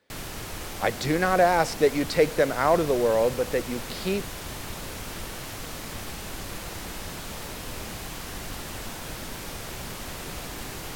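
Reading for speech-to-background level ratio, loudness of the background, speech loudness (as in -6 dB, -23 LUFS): 11.5 dB, -36.0 LUFS, -24.5 LUFS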